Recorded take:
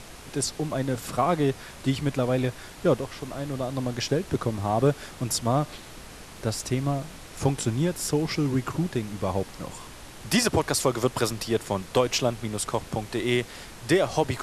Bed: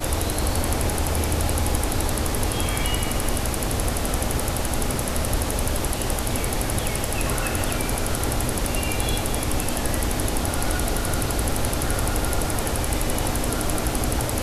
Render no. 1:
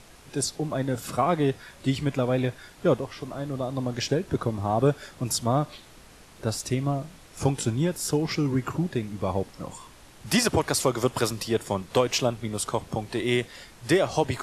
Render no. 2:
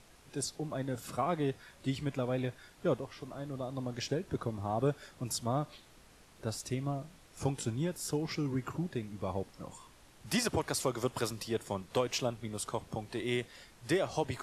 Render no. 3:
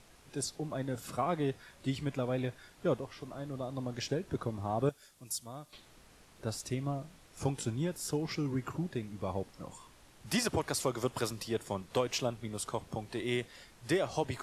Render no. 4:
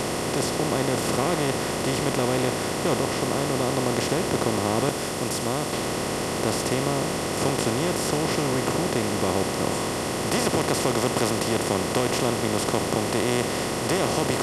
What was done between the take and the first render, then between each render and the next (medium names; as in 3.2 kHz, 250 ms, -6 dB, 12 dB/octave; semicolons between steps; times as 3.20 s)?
noise print and reduce 7 dB
trim -9 dB
4.89–5.73 s: pre-emphasis filter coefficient 0.8
spectral levelling over time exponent 0.2